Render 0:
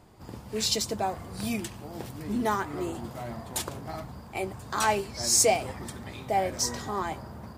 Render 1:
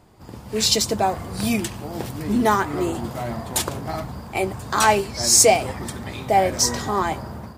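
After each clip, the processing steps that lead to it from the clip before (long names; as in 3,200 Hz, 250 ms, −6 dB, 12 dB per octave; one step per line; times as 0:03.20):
automatic gain control gain up to 7 dB
level +2 dB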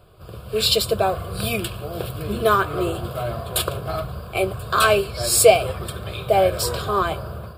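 phaser with its sweep stopped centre 1,300 Hz, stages 8
level +5 dB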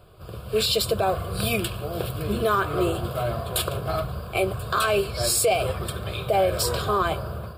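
brickwall limiter −13 dBFS, peak gain reduction 11.5 dB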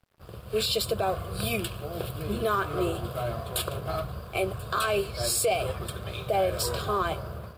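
dead-zone distortion −48 dBFS
level −4 dB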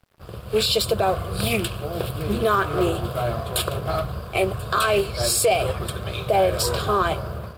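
highs frequency-modulated by the lows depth 0.17 ms
level +6.5 dB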